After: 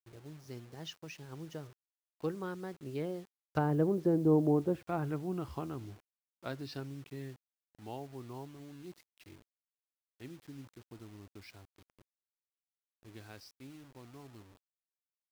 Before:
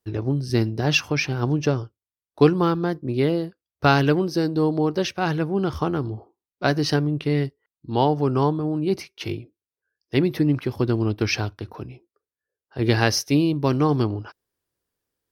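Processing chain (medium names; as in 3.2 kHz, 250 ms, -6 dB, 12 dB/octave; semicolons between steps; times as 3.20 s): Doppler pass-by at 4.30 s, 25 m/s, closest 9.4 m; low-pass that closes with the level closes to 770 Hz, closed at -23 dBFS; bit crusher 9-bit; trim -5 dB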